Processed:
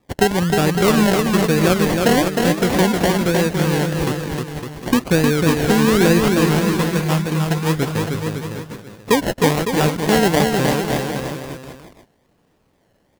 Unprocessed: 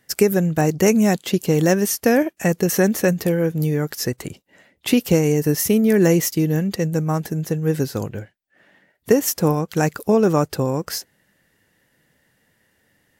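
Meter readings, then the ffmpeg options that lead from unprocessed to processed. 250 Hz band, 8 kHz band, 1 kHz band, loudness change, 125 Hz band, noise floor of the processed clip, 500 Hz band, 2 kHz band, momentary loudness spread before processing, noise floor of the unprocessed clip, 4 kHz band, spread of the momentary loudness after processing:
+2.0 dB, −0.5 dB, +7.0 dB, +2.0 dB, +2.5 dB, −62 dBFS, +1.0 dB, +6.5 dB, 9 LU, −65 dBFS, +7.0 dB, 11 LU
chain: -af "acrusher=samples=29:mix=1:aa=0.000001:lfo=1:lforange=17.4:lforate=1.1,aecho=1:1:310|558|756.4|915.1|1042:0.631|0.398|0.251|0.158|0.1"

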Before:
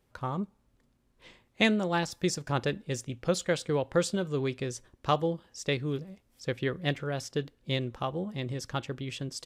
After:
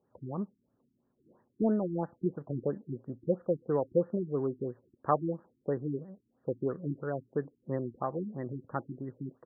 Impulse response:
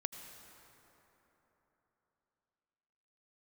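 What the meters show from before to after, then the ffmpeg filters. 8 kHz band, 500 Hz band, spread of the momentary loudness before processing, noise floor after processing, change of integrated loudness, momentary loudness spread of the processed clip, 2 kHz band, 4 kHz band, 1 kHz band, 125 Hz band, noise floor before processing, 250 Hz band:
below −40 dB, −1.0 dB, 9 LU, −77 dBFS, −3.0 dB, 10 LU, −18.0 dB, below −40 dB, −3.0 dB, −4.5 dB, −71 dBFS, −1.5 dB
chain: -af "highpass=170,lowpass=3000,adynamicsmooth=sensitivity=1:basefreq=2100,afftfilt=real='re*lt(b*sr/1024,370*pow(2000/370,0.5+0.5*sin(2*PI*3*pts/sr)))':imag='im*lt(b*sr/1024,370*pow(2000/370,0.5+0.5*sin(2*PI*3*pts/sr)))':win_size=1024:overlap=0.75"

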